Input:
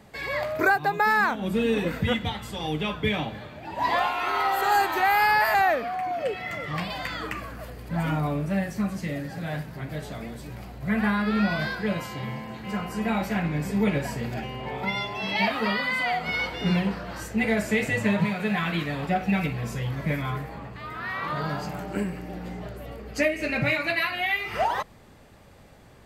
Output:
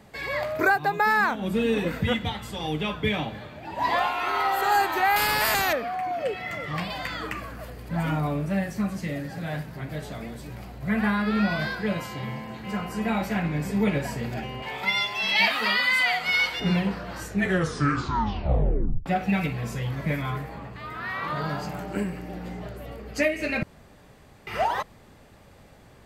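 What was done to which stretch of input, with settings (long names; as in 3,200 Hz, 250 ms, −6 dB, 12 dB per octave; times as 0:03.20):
0:05.16–0:05.73: every bin compressed towards the loudest bin 2 to 1
0:14.62–0:16.60: tilt shelving filter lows −8.5 dB
0:17.23: tape stop 1.83 s
0:23.63–0:24.47: fill with room tone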